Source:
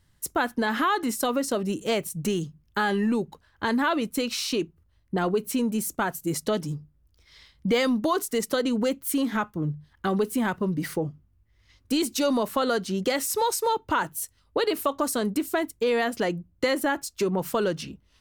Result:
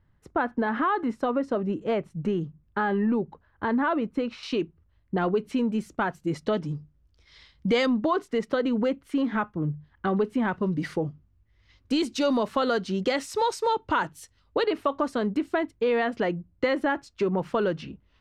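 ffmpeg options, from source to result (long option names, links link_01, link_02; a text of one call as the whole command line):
ffmpeg -i in.wav -af "asetnsamples=nb_out_samples=441:pad=0,asendcmd='4.43 lowpass f 2900;6.75 lowpass f 5500;7.86 lowpass f 2400;10.53 lowpass f 4500;14.63 lowpass f 2700',lowpass=1600" out.wav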